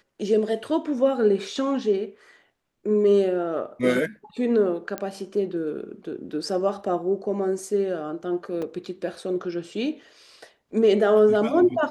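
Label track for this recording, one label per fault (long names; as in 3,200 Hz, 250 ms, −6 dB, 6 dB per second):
4.980000	4.980000	click −14 dBFS
8.620000	8.620000	drop-out 4.7 ms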